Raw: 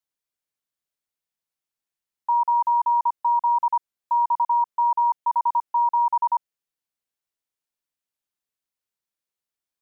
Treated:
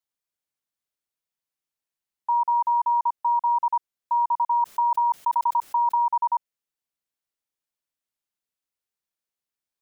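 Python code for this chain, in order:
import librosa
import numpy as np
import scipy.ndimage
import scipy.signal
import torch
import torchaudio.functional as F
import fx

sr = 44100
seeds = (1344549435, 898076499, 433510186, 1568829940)

y = fx.env_flatten(x, sr, amount_pct=100, at=(4.51, 5.96), fade=0.02)
y = F.gain(torch.from_numpy(y), -1.5).numpy()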